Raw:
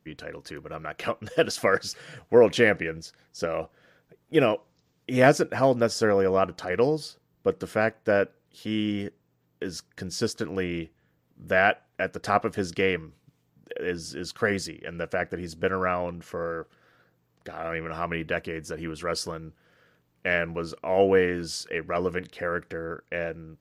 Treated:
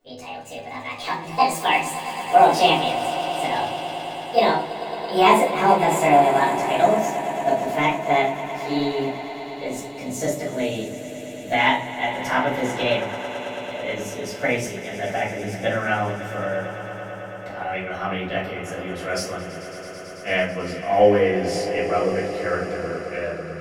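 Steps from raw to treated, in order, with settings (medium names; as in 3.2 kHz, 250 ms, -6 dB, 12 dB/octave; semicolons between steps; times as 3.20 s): pitch bend over the whole clip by +8.5 st ending unshifted; echo with a slow build-up 110 ms, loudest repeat 5, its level -16 dB; simulated room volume 270 m³, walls furnished, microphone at 5.4 m; trim -5.5 dB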